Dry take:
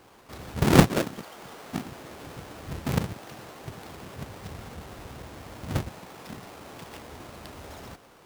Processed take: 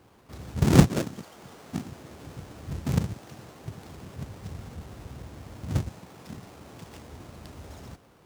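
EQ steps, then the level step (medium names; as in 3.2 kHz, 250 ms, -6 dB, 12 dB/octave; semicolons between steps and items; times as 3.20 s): high-pass 51 Hz; dynamic bell 6.7 kHz, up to +6 dB, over -55 dBFS, Q 1; bass shelf 260 Hz +11.5 dB; -6.5 dB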